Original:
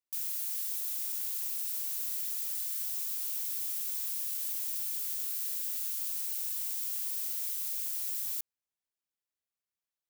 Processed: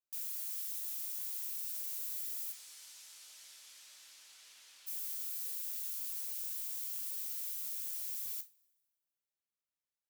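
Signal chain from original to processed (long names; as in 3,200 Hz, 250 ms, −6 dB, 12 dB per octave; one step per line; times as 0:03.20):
0:02.51–0:04.86: low-pass filter 7,100 Hz → 3,800 Hz 12 dB per octave
coupled-rooms reverb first 0.23 s, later 1.5 s, from −27 dB, DRR 6 dB
level −6.5 dB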